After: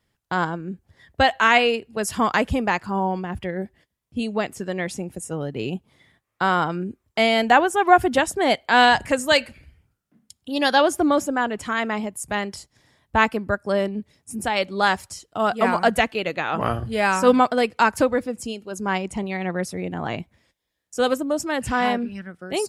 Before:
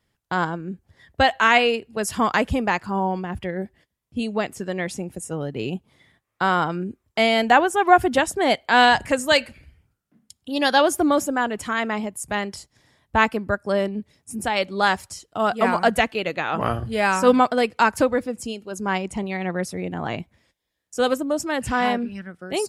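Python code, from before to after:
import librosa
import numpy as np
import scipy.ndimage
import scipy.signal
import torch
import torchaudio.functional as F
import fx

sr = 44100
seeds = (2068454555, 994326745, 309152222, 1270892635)

y = fx.high_shelf(x, sr, hz=10000.0, db=-8.5, at=(10.75, 11.68))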